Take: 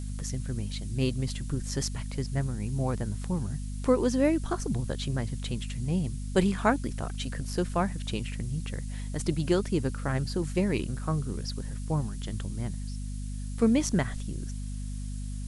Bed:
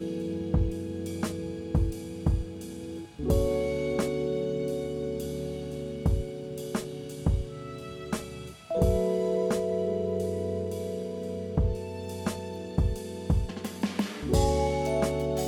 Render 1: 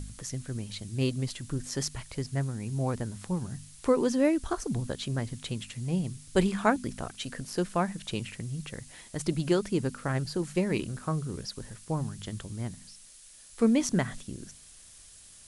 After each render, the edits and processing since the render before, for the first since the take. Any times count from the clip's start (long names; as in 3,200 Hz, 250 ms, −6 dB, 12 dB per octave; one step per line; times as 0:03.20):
hum removal 50 Hz, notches 5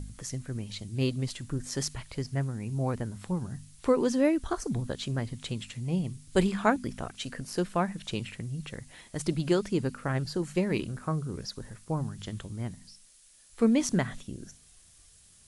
noise reduction from a noise print 6 dB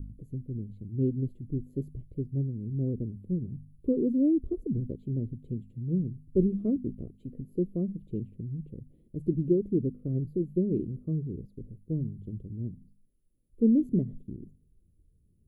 dynamic equaliser 380 Hz, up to +3 dB, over −35 dBFS, Q 0.79
inverse Chebyshev band-stop filter 780–9,900 Hz, stop band 40 dB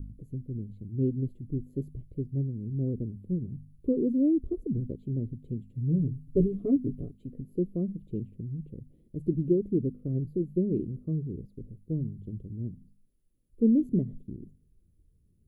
0:05.74–0:07.14: comb filter 7.1 ms, depth 90%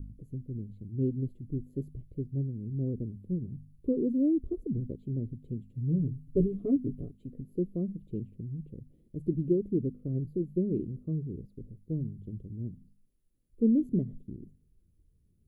level −2 dB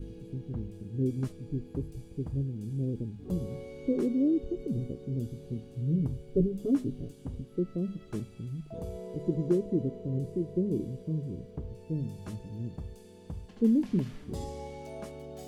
mix in bed −15 dB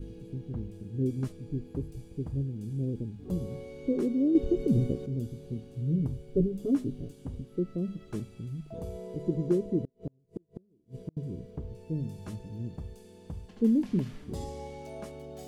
0:04.35–0:05.06: clip gain +7.5 dB
0:09.83–0:11.17: gate with flip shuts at −25 dBFS, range −37 dB